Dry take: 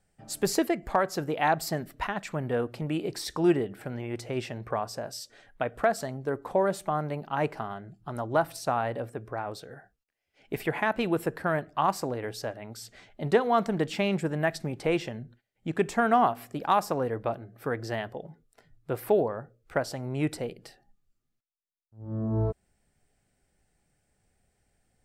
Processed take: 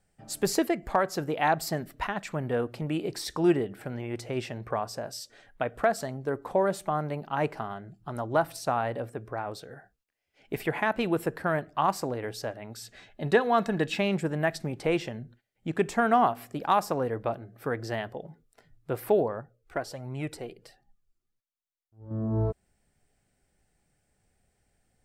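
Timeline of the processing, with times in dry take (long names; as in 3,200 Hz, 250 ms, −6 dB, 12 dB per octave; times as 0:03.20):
0:12.69–0:13.98: hollow resonant body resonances 1,700/2,600/3,800 Hz, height 10 dB → 14 dB
0:19.41–0:22.11: flanger 1.4 Hz, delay 0.8 ms, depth 2.2 ms, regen +38%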